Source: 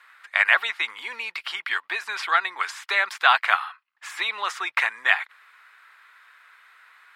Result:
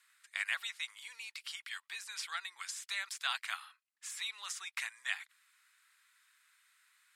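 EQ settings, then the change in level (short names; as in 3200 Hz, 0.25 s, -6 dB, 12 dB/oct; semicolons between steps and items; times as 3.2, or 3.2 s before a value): band-pass 7900 Hz, Q 1.3; high shelf 7700 Hz +9 dB; -3.0 dB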